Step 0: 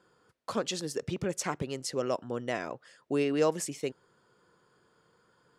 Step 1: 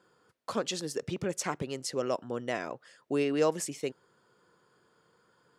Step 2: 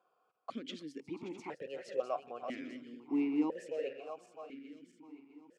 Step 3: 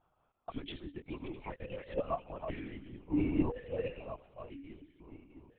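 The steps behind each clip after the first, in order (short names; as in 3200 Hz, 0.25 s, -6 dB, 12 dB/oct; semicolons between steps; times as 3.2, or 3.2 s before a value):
low shelf 70 Hz -8.5 dB
regenerating reverse delay 0.328 s, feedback 67%, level -7.5 dB; vowel sequencer 2 Hz; gain +3 dB
LPC vocoder at 8 kHz whisper; gain +1 dB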